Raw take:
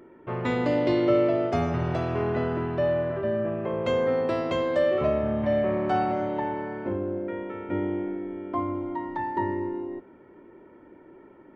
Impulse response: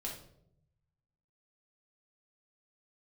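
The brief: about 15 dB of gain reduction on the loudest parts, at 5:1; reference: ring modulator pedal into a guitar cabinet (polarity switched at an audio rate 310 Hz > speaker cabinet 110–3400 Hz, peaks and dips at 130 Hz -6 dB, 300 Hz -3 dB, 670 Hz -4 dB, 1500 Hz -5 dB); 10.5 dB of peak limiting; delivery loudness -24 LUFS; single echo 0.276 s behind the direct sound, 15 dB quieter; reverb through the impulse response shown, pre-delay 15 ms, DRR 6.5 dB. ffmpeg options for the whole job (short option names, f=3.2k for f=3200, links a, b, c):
-filter_complex "[0:a]acompressor=threshold=-36dB:ratio=5,alimiter=level_in=11dB:limit=-24dB:level=0:latency=1,volume=-11dB,aecho=1:1:276:0.178,asplit=2[a][b];[1:a]atrim=start_sample=2205,adelay=15[c];[b][c]afir=irnorm=-1:irlink=0,volume=-6dB[d];[a][d]amix=inputs=2:normalize=0,aeval=exprs='val(0)*sgn(sin(2*PI*310*n/s))':c=same,highpass=110,equalizer=f=130:t=q:w=4:g=-6,equalizer=f=300:t=q:w=4:g=-3,equalizer=f=670:t=q:w=4:g=-4,equalizer=f=1.5k:t=q:w=4:g=-5,lowpass=f=3.4k:w=0.5412,lowpass=f=3.4k:w=1.3066,volume=21dB"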